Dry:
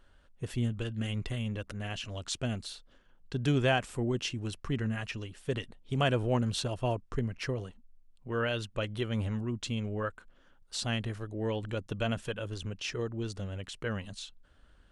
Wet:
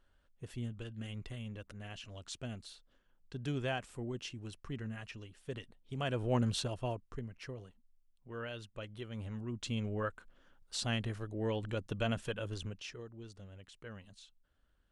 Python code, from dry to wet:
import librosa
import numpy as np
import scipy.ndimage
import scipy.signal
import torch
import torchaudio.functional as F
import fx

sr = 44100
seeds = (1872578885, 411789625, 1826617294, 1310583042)

y = fx.gain(x, sr, db=fx.line((6.02, -9.5), (6.43, -1.0), (7.27, -11.5), (9.14, -11.5), (9.76, -2.5), (12.61, -2.5), (13.03, -14.0)))